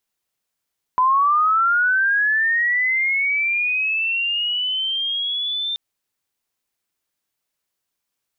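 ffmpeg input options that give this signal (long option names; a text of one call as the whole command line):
ffmpeg -f lavfi -i "aevalsrc='pow(10,(-13-8.5*t/4.78)/20)*sin(2*PI*(1000*t+2600*t*t/(2*4.78)))':duration=4.78:sample_rate=44100" out.wav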